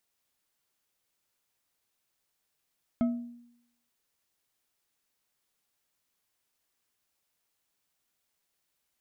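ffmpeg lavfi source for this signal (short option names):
-f lavfi -i "aevalsrc='0.0891*pow(10,-3*t/0.78)*sin(2*PI*239*t)+0.0282*pow(10,-3*t/0.384)*sin(2*PI*658.9*t)+0.00891*pow(10,-3*t/0.239)*sin(2*PI*1291.6*t)+0.00282*pow(10,-3*t/0.168)*sin(2*PI*2135*t)+0.000891*pow(10,-3*t/0.127)*sin(2*PI*3188.3*t)':d=0.89:s=44100"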